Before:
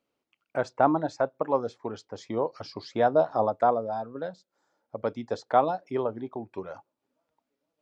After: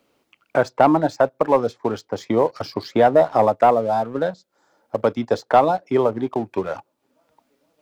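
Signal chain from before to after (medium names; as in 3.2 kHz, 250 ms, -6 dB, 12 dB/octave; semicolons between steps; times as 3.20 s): waveshaping leveller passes 1; three bands compressed up and down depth 40%; trim +6 dB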